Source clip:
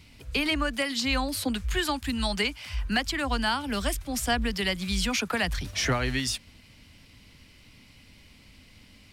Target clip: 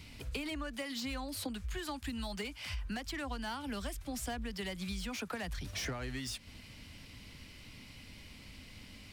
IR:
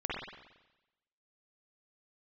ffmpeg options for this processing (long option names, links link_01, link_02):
-filter_complex "[0:a]acrossover=split=920[link_01][link_02];[link_02]asoftclip=type=tanh:threshold=-28.5dB[link_03];[link_01][link_03]amix=inputs=2:normalize=0,acompressor=threshold=-39dB:ratio=6,volume=1.5dB"